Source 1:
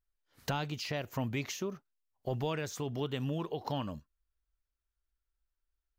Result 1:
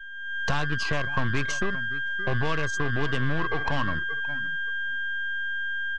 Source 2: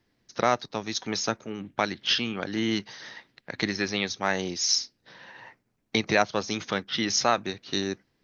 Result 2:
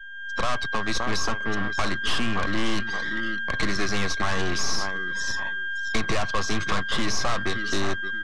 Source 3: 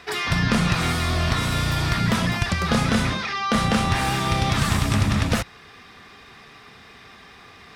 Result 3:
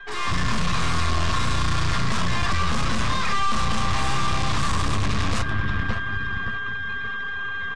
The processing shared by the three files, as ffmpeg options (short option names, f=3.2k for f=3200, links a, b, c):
-filter_complex "[0:a]aeval=exprs='val(0)+0.0178*sin(2*PI*1600*n/s)':c=same,aeval=exprs='0.501*(cos(1*acos(clip(val(0)/0.501,-1,1)))-cos(1*PI/2))+0.126*(cos(4*acos(clip(val(0)/0.501,-1,1)))-cos(4*PI/2))+0.0355*(cos(6*acos(clip(val(0)/0.501,-1,1)))-cos(6*PI/2))':c=same,aecho=1:1:571|1142|1713:0.158|0.0539|0.0183,afftdn=nr=23:nf=-42,aeval=exprs='(tanh(39.8*val(0)+0.75)-tanh(0.75))/39.8':c=same,lowpass=f=8.7k:w=0.5412,lowpass=f=8.7k:w=1.3066,equalizer=f=1.1k:t=o:w=0.21:g=13.5,dynaudnorm=f=130:g=5:m=12dB,lowshelf=f=84:g=9,acrossover=split=100|1800[a][b][c];[a]acompressor=threshold=-20dB:ratio=4[d];[b]acompressor=threshold=-26dB:ratio=4[e];[c]acompressor=threshold=-29dB:ratio=4[f];[d][e][f]amix=inputs=3:normalize=0"